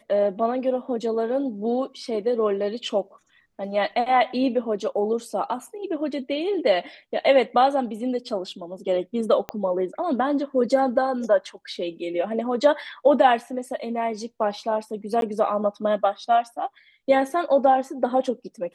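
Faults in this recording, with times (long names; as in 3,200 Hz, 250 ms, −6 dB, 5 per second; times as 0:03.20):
0:09.49: click −14 dBFS
0:15.21–0:15.22: drop-out 12 ms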